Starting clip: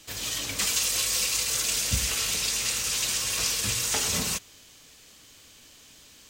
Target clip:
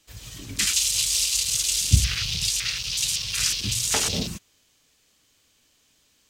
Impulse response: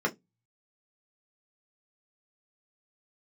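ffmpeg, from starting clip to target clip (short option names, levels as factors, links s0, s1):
-filter_complex "[0:a]afwtdn=0.0282,asettb=1/sr,asplit=3[s0][s1][s2];[s0]atrim=end=1.934[s3];[s1]atrim=start=1.93:end=2.49,asetpts=PTS-STARTPTS,afade=t=in:d=0.004:c=qsin,afade=t=out:st=0.556:d=0.004:c=qsin,equalizer=f=98:w=0.89:g=9.5[s4];[s2]atrim=start=2.486[s5];[s3][s4]acrossfade=d=0.004:c1=hsin:c2=qsin[s6];[s6][s5]acrossfade=d=0.004:c1=qsin:c2=hsin,volume=1.78"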